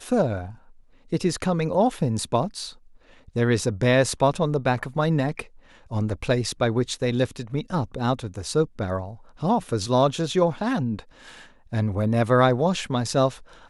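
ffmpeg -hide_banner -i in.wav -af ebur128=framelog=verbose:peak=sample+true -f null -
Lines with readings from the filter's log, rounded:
Integrated loudness:
  I:         -24.0 LUFS
  Threshold: -34.6 LUFS
Loudness range:
  LRA:         2.9 LU
  Threshold: -44.8 LUFS
  LRA low:   -26.4 LUFS
  LRA high:  -23.5 LUFS
Sample peak:
  Peak:       -5.7 dBFS
True peak:
  Peak:       -5.7 dBFS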